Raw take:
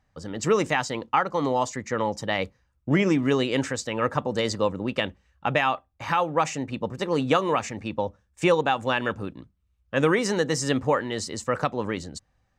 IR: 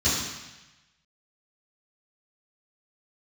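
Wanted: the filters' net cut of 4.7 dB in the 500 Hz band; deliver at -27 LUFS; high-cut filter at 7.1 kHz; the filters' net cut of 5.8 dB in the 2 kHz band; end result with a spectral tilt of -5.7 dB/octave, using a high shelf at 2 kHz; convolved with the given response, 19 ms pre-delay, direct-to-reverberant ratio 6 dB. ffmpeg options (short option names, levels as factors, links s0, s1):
-filter_complex "[0:a]lowpass=7100,equalizer=f=500:t=o:g=-5,highshelf=f=2000:g=-6,equalizer=f=2000:t=o:g=-3.5,asplit=2[s0][s1];[1:a]atrim=start_sample=2205,adelay=19[s2];[s1][s2]afir=irnorm=-1:irlink=0,volume=0.1[s3];[s0][s3]amix=inputs=2:normalize=0"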